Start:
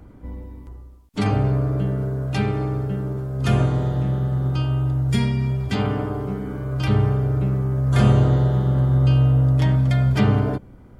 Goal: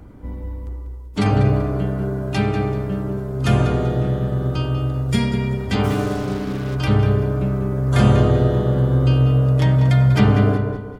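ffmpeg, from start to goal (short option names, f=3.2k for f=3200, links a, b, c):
-filter_complex "[0:a]asplit=2[a][b];[b]aecho=0:1:192|384|576|768:0.168|0.0722|0.031|0.0133[c];[a][c]amix=inputs=2:normalize=0,asplit=3[d][e][f];[d]afade=t=out:st=5.83:d=0.02[g];[e]acrusher=bits=5:mix=0:aa=0.5,afade=t=in:st=5.83:d=0.02,afade=t=out:st=6.74:d=0.02[h];[f]afade=t=in:st=6.74:d=0.02[i];[g][h][i]amix=inputs=3:normalize=0,asplit=2[j][k];[k]adelay=194,lowpass=f=1.9k:p=1,volume=-5.5dB,asplit=2[l][m];[m]adelay=194,lowpass=f=1.9k:p=1,volume=0.36,asplit=2[n][o];[o]adelay=194,lowpass=f=1.9k:p=1,volume=0.36,asplit=2[p][q];[q]adelay=194,lowpass=f=1.9k:p=1,volume=0.36[r];[l][n][p][r]amix=inputs=4:normalize=0[s];[j][s]amix=inputs=2:normalize=0,volume=3dB"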